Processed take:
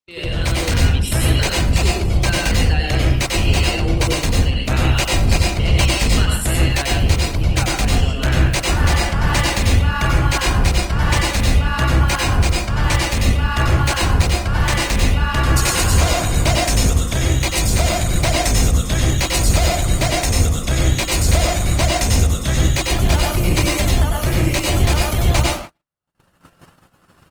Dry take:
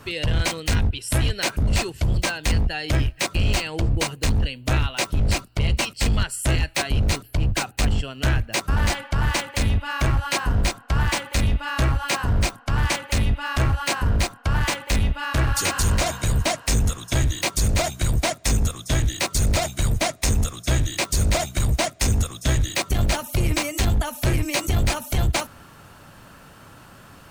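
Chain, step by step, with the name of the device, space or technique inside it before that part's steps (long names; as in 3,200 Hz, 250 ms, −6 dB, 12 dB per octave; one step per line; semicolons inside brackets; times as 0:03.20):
speakerphone in a meeting room (convolution reverb RT60 0.45 s, pre-delay 90 ms, DRR −1.5 dB; far-end echo of a speakerphone 290 ms, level −19 dB; automatic gain control gain up to 11.5 dB; noise gate −27 dBFS, range −54 dB; level −2.5 dB; Opus 24 kbit/s 48,000 Hz)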